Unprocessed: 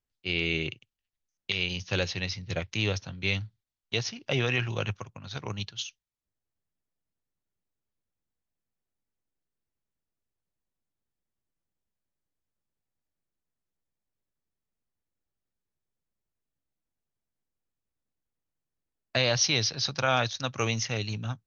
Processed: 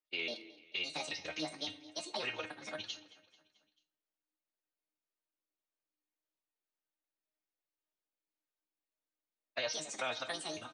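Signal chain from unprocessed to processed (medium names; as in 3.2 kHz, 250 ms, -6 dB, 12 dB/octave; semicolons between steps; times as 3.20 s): pitch shift switched off and on +7 st, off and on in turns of 556 ms; treble shelf 5.7 kHz +7.5 dB; feedback comb 310 Hz, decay 0.43 s, harmonics all, mix 80%; compression 2.5:1, threshold -42 dBFS, peak gain reduction 9 dB; three-band isolator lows -24 dB, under 280 Hz, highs -13 dB, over 4.6 kHz; time stretch by phase-locked vocoder 0.5×; feedback delay 220 ms, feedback 56%, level -20 dB; on a send at -14.5 dB: reverberation, pre-delay 3 ms; on the sum: flange 0.41 Hz, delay 6.2 ms, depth 7.7 ms, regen +47%; trim +13.5 dB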